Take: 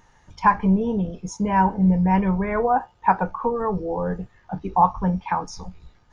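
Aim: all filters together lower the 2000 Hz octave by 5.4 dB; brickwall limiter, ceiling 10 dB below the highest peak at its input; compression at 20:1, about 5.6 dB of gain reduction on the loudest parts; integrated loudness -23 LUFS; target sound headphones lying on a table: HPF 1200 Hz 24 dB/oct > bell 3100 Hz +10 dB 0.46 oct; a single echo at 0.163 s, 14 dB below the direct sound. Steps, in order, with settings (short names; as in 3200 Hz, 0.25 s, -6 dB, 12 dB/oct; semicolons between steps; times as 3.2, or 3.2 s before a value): bell 2000 Hz -8 dB; compressor 20:1, threshold -18 dBFS; limiter -19 dBFS; HPF 1200 Hz 24 dB/oct; bell 3100 Hz +10 dB 0.46 oct; echo 0.163 s -14 dB; gain +18.5 dB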